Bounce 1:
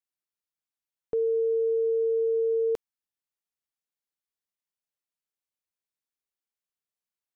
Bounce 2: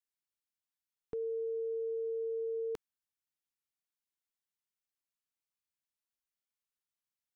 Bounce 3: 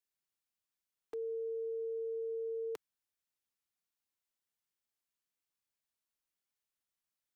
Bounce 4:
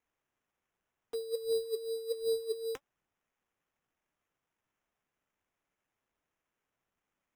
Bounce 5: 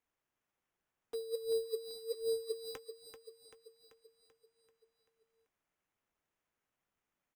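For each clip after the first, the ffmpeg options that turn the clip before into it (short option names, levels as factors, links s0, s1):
-af "equalizer=f=550:t=o:w=0.72:g=-13.5,volume=0.708"
-filter_complex "[0:a]acrossover=split=160|550[s0][s1][s2];[s0]aeval=exprs='(mod(251*val(0)+1,2)-1)/251':c=same[s3];[s1]alimiter=level_in=7.94:limit=0.0631:level=0:latency=1,volume=0.126[s4];[s3][s4][s2]amix=inputs=3:normalize=0,volume=1.12"
-af "aphaser=in_gain=1:out_gain=1:delay=4.2:decay=0.7:speed=1.3:type=sinusoidal,acrusher=samples=10:mix=1:aa=0.000001"
-af "aecho=1:1:387|774|1161|1548|1935|2322|2709:0.335|0.188|0.105|0.0588|0.0329|0.0184|0.0103,volume=0.708"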